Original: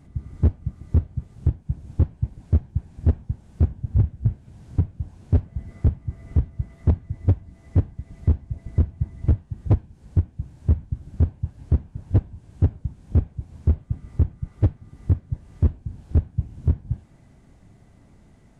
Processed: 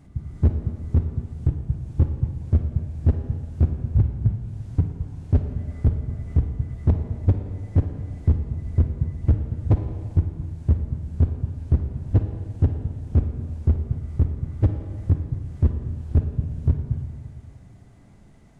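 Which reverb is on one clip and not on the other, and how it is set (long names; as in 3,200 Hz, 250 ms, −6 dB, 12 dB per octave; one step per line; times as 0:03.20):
four-comb reverb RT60 2.1 s, DRR 5.5 dB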